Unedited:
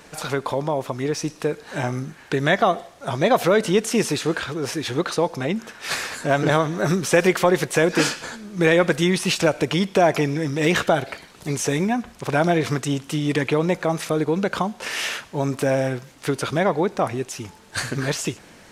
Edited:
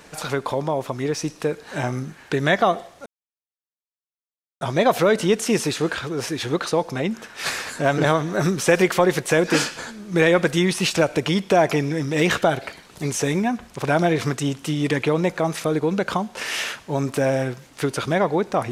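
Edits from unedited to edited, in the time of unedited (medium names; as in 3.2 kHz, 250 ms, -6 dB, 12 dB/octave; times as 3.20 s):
3.06 s: insert silence 1.55 s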